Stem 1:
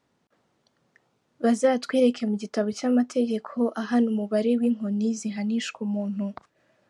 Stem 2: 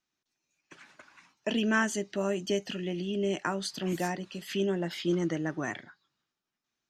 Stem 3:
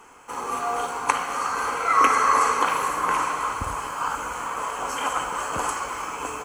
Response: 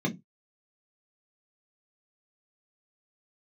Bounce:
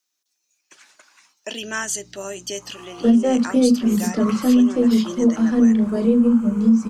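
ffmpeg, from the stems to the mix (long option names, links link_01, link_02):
-filter_complex "[0:a]aeval=exprs='val(0)+0.00141*(sin(2*PI*60*n/s)+sin(2*PI*2*60*n/s)/2+sin(2*PI*3*60*n/s)/3+sin(2*PI*4*60*n/s)/4+sin(2*PI*5*60*n/s)/5)':channel_layout=same,tremolo=f=260:d=0.333,adelay=1600,volume=0dB,asplit=2[link_01][link_02];[link_02]volume=-8dB[link_03];[1:a]bass=frequency=250:gain=-15,treble=frequency=4000:gain=14,volume=0.5dB,asplit=2[link_04][link_05];[2:a]adelay=2250,volume=-14.5dB[link_06];[link_05]apad=whole_len=383291[link_07];[link_06][link_07]sidechaincompress=threshold=-36dB:ratio=8:attack=8.7:release=174[link_08];[3:a]atrim=start_sample=2205[link_09];[link_03][link_09]afir=irnorm=-1:irlink=0[link_10];[link_01][link_04][link_08][link_10]amix=inputs=4:normalize=0,acompressor=threshold=-11dB:ratio=6"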